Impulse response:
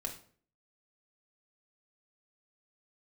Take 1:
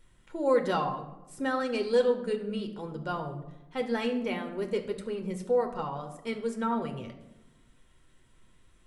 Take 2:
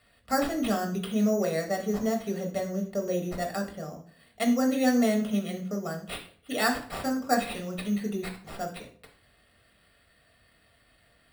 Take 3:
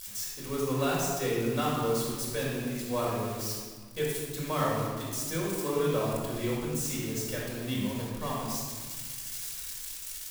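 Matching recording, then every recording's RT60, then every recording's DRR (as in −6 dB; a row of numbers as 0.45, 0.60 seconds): 2; 1.0, 0.50, 1.6 seconds; 3.5, 1.5, −6.0 decibels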